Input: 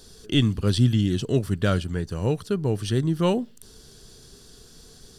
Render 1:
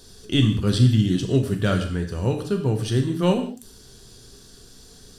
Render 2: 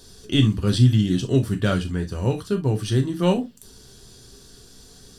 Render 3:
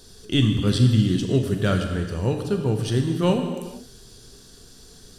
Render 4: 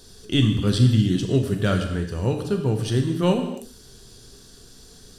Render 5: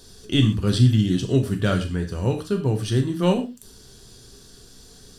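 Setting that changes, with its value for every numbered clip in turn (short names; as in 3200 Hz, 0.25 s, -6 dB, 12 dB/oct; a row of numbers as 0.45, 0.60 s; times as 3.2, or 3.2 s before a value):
non-linear reverb, gate: 220, 90, 500, 330, 150 ms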